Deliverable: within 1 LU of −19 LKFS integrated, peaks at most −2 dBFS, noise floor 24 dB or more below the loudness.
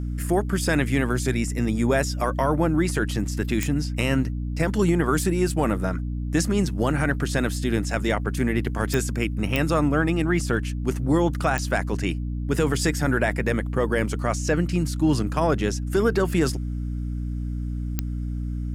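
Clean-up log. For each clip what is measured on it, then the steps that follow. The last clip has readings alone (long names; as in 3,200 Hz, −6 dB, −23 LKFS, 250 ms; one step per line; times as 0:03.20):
number of clicks 5; mains hum 60 Hz; hum harmonics up to 300 Hz; level of the hum −26 dBFS; integrated loudness −24.0 LKFS; sample peak −7.0 dBFS; target loudness −19.0 LKFS
→ click removal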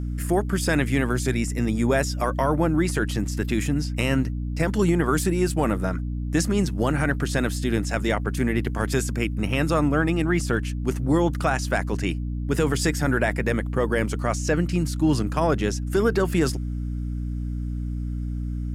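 number of clicks 0; mains hum 60 Hz; hum harmonics up to 300 Hz; level of the hum −26 dBFS
→ hum removal 60 Hz, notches 5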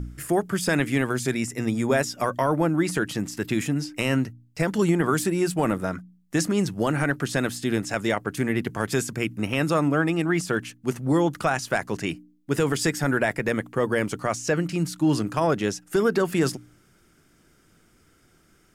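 mains hum none found; integrated loudness −25.0 LKFS; sample peak −10.0 dBFS; target loudness −19.0 LKFS
→ level +6 dB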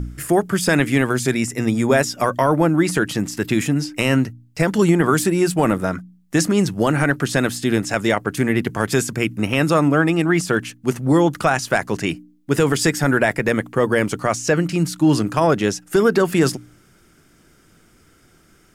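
integrated loudness −19.0 LKFS; sample peak −4.0 dBFS; background noise floor −54 dBFS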